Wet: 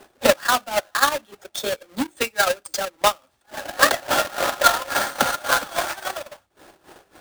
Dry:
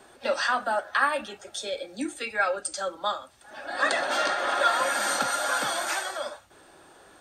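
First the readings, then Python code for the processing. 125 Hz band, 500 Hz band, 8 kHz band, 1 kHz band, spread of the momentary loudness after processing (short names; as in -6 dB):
n/a, +6.0 dB, +6.0 dB, +4.5 dB, 14 LU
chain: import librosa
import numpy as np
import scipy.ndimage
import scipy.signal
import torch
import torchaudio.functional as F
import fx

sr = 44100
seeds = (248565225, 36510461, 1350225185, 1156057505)

y = fx.halfwave_hold(x, sr)
y = y * (1.0 - 0.63 / 2.0 + 0.63 / 2.0 * np.cos(2.0 * np.pi * 3.6 * (np.arange(len(y)) / sr)))
y = fx.transient(y, sr, attack_db=10, sustain_db=-11)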